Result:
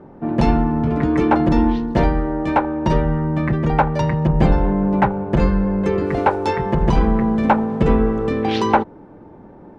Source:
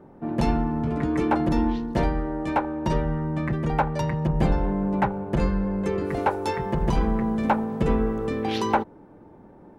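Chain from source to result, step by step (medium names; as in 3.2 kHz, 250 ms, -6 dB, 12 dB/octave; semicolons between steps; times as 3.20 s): distance through air 79 m; trim +7 dB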